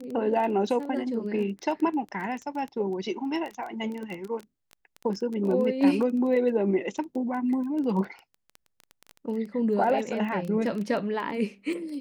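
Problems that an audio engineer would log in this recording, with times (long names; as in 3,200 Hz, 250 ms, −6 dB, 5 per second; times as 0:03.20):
surface crackle 12 per second −31 dBFS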